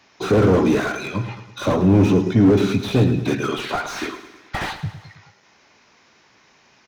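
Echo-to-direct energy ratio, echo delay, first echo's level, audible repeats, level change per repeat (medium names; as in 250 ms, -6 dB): -11.0 dB, 107 ms, -12.5 dB, 4, -5.5 dB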